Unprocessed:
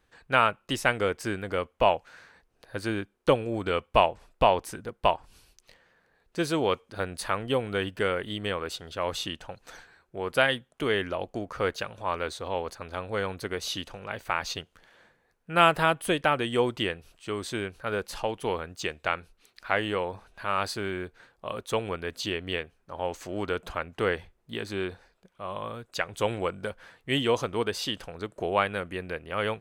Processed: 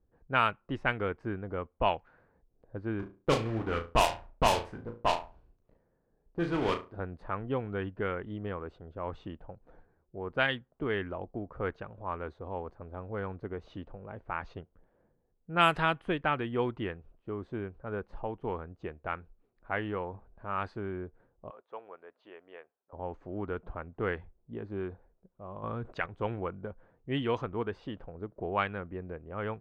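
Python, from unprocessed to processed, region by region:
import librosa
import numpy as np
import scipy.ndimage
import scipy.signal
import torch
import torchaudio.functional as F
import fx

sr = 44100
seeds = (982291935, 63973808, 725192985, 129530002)

y = fx.chain(x, sr, fx.block_float(bits=3),
    fx.room_flutter(wall_m=6.1, rt60_s=0.34), at=(2.99, 6.97))
y = fx.chain(y, sr, fx.highpass(hz=860.0, slope=12),
    fx.air_absorb(metres=120.0), at=(21.5, 22.93))
y = fx.chain(y, sr, fx.high_shelf(hz=2100.0, db=5.5),
    fx.env_flatten(amount_pct=50), at=(25.63, 26.06))
y = fx.dynamic_eq(y, sr, hz=560.0, q=2.2, threshold_db=-40.0, ratio=4.0, max_db=-5)
y = fx.env_lowpass(y, sr, base_hz=480.0, full_db=-15.0)
y = fx.low_shelf(y, sr, hz=70.0, db=7.0)
y = y * librosa.db_to_amplitude(-3.5)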